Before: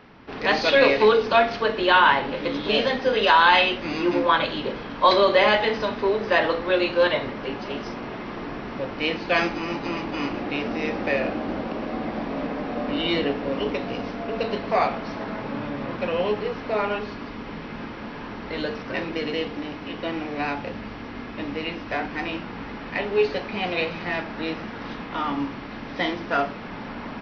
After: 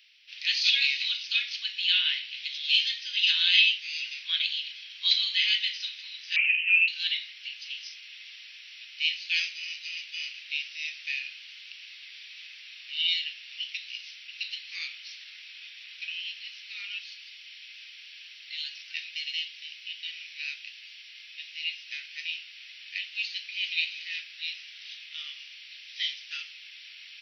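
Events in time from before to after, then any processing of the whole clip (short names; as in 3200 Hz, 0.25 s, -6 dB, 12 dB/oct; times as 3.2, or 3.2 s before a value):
6.36–6.88 inverted band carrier 3000 Hz
whole clip: steep high-pass 2600 Hz 36 dB/oct; gain +4 dB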